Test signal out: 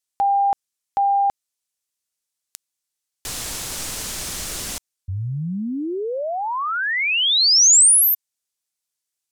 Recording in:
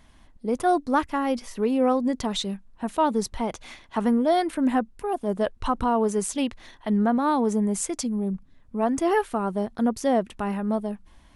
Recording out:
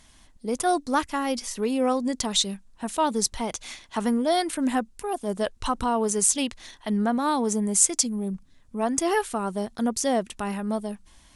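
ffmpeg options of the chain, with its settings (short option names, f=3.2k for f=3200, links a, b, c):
-af "equalizer=f=7.7k:t=o:w=2.3:g=14,volume=-2.5dB"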